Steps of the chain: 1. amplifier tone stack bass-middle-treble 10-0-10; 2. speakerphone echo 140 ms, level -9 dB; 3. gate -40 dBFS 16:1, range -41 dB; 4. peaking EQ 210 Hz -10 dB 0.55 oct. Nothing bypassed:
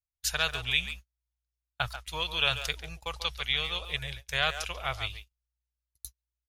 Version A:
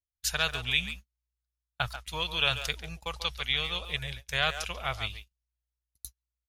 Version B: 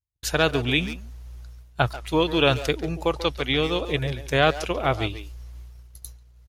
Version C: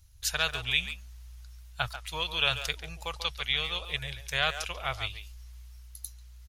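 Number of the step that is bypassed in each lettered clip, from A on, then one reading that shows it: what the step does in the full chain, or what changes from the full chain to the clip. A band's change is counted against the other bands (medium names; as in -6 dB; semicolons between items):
4, 250 Hz band +3.5 dB; 1, 250 Hz band +16.5 dB; 3, momentary loudness spread change +6 LU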